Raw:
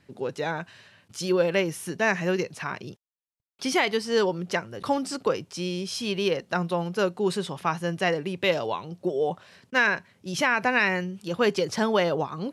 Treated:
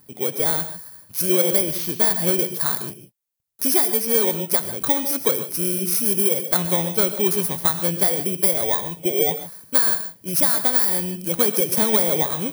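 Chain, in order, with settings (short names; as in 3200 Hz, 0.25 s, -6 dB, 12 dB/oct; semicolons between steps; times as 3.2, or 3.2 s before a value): FFT order left unsorted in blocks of 16 samples; high shelf 7300 Hz +12 dB; compressor 10:1, threshold -17 dBFS, peak gain reduction 10.5 dB; non-linear reverb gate 0.17 s rising, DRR 10 dB; gain +3.5 dB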